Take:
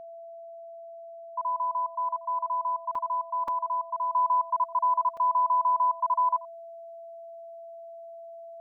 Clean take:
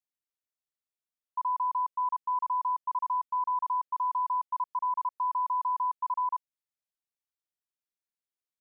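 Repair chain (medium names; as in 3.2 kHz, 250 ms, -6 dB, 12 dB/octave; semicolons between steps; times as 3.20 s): band-stop 670 Hz, Q 30; interpolate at 2.95/3.48/5.17 s, 3.4 ms; inverse comb 87 ms -20 dB; gain correction -5 dB, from 4.12 s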